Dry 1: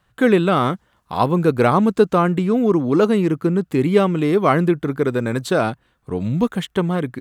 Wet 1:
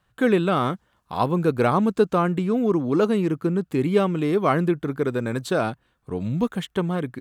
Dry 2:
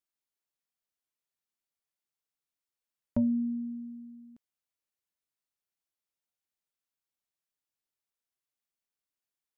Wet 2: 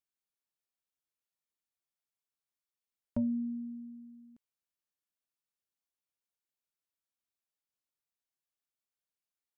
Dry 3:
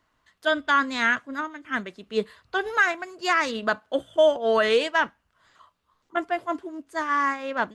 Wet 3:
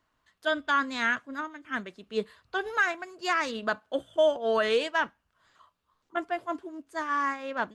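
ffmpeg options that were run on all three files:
ffmpeg -i in.wav -af "bandreject=frequency=2000:width=27,volume=-4.5dB" out.wav

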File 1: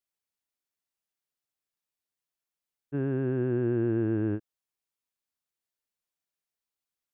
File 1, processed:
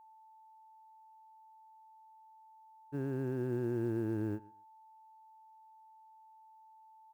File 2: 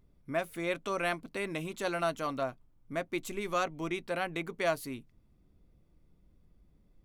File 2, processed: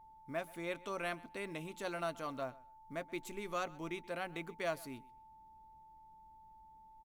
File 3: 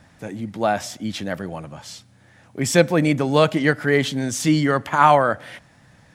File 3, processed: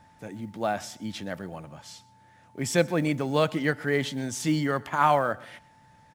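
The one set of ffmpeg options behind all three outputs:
ffmpeg -i in.wav -af "aeval=exprs='val(0)+0.00355*sin(2*PI*880*n/s)':channel_layout=same,aecho=1:1:128|256:0.0794|0.0143,acrusher=bits=9:mode=log:mix=0:aa=0.000001,volume=-7.5dB" out.wav

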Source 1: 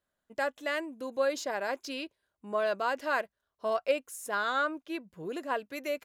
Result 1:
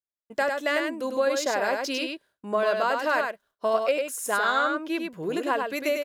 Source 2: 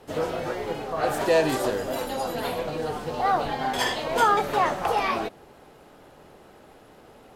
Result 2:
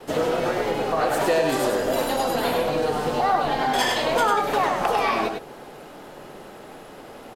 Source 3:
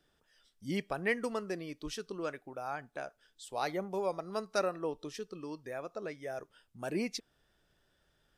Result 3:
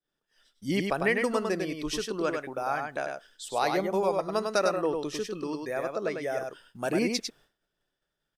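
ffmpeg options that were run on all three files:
ffmpeg -i in.wav -filter_complex "[0:a]acompressor=threshold=-30dB:ratio=3,equalizer=frequency=64:width_type=o:width=1.3:gain=-11,asplit=2[link_01][link_02];[link_02]aecho=0:1:100:0.596[link_03];[link_01][link_03]amix=inputs=2:normalize=0,agate=range=-33dB:threshold=-60dB:ratio=3:detection=peak,volume=8.5dB" out.wav

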